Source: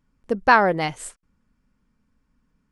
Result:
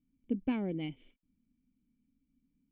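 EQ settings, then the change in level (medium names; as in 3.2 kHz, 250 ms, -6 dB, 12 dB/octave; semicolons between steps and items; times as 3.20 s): dynamic bell 1.7 kHz, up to -4 dB, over -27 dBFS, Q 0.87; cascade formant filter i; 0.0 dB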